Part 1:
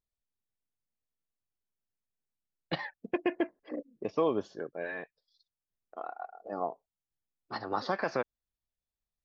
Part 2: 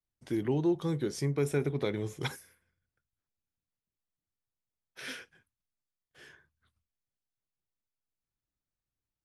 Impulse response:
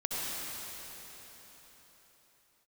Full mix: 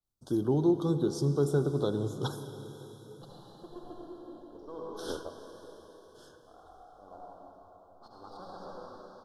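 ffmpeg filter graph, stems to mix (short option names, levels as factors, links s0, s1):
-filter_complex "[0:a]aeval=exprs='if(lt(val(0),0),0.447*val(0),val(0))':c=same,adelay=500,volume=1.33,asplit=2[s0][s1];[s1]volume=0.119[s2];[1:a]volume=1.12,asplit=3[s3][s4][s5];[s4]volume=0.2[s6];[s5]apad=whole_len=429951[s7];[s0][s7]sidechaingate=range=0.0224:threshold=0.00282:ratio=16:detection=peak[s8];[2:a]atrim=start_sample=2205[s9];[s2][s6]amix=inputs=2:normalize=0[s10];[s10][s9]afir=irnorm=-1:irlink=0[s11];[s8][s3][s11]amix=inputs=3:normalize=0,asuperstop=centerf=2200:order=8:qfactor=1.1,adynamicequalizer=threshold=0.00141:dfrequency=5300:dqfactor=0.7:tfrequency=5300:tqfactor=0.7:attack=5:release=100:ratio=0.375:range=3:mode=cutabove:tftype=highshelf"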